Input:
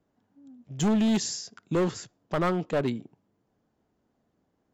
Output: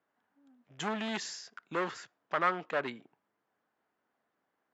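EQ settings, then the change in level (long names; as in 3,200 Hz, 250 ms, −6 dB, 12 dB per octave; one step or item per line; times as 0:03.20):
resonant band-pass 1,600 Hz, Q 1.2
+3.5 dB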